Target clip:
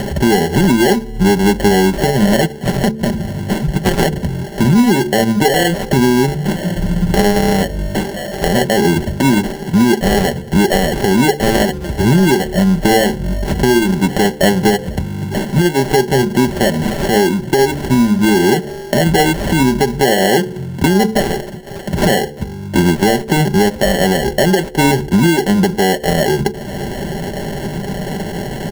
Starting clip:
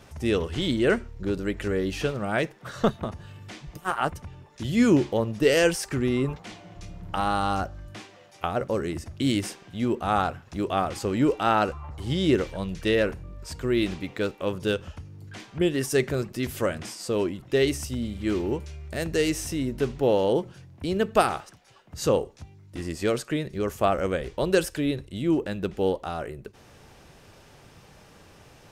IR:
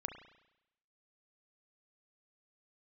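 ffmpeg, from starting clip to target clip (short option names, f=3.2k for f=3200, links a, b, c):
-filter_complex "[0:a]equalizer=f=230:w=0.47:g=8,acrossover=split=240[a][b];[b]acrusher=samples=36:mix=1:aa=0.000001[c];[a][c]amix=inputs=2:normalize=0,acompressor=mode=upward:threshold=-34dB:ratio=2.5,aecho=1:1:5.1:0.55,bandreject=f=73.36:t=h:w=4,bandreject=f=146.72:t=h:w=4,bandreject=f=220.08:t=h:w=4,bandreject=f=293.44:t=h:w=4,bandreject=f=366.8:t=h:w=4,bandreject=f=440.16:t=h:w=4,bandreject=f=513.52:t=h:w=4,acompressor=threshold=-27dB:ratio=16,alimiter=level_in=20.5dB:limit=-1dB:release=50:level=0:latency=1,volume=-1dB"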